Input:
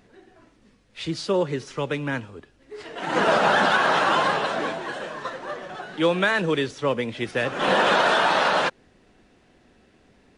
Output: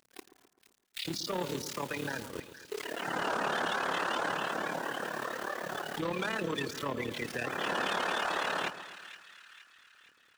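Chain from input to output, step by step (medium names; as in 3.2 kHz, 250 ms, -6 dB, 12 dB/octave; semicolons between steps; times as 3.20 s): coarse spectral quantiser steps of 30 dB; AM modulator 36 Hz, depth 75%; bit crusher 9-bit; hum notches 50/100/150/200/250 Hz; waveshaping leveller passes 3; treble shelf 2.6 kHz +9 dB, from 2.30 s +2 dB; compression 6:1, threshold -28 dBFS, peak gain reduction 14 dB; spectral noise reduction 7 dB; peak limiter -26.5 dBFS, peak gain reduction 10 dB; bass shelf 86 Hz -10 dB; two-band feedback delay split 1.5 kHz, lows 129 ms, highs 468 ms, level -12.5 dB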